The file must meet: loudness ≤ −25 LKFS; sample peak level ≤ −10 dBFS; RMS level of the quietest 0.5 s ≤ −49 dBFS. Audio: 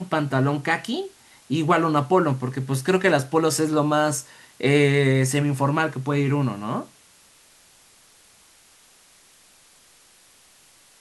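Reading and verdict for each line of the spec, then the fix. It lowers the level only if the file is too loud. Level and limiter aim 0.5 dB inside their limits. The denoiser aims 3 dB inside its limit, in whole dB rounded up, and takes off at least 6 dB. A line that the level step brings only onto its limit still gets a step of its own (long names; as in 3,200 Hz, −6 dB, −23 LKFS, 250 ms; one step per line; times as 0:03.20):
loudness −22.0 LKFS: out of spec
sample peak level −5.5 dBFS: out of spec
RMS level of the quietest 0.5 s −55 dBFS: in spec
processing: level −3.5 dB
brickwall limiter −10.5 dBFS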